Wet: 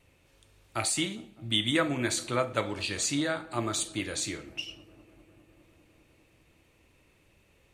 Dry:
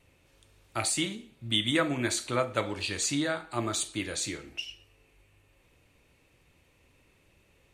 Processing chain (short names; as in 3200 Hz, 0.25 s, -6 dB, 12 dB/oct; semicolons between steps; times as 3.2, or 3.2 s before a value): dark delay 0.202 s, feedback 81%, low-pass 820 Hz, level -21 dB